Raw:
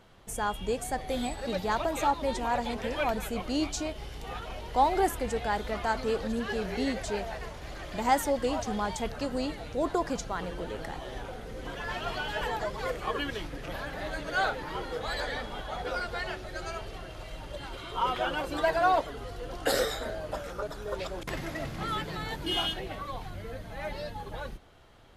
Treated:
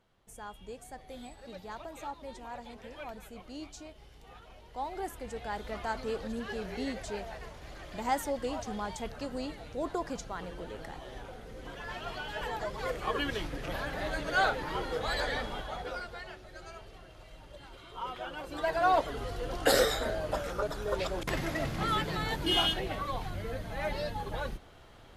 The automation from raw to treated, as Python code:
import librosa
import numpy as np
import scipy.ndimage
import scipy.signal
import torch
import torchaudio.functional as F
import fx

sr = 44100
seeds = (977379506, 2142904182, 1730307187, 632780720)

y = fx.gain(x, sr, db=fx.line((4.74, -14.0), (5.74, -5.5), (12.27, -5.5), (13.35, 1.0), (15.48, 1.0), (16.24, -10.0), (18.32, -10.0), (19.15, 2.5)))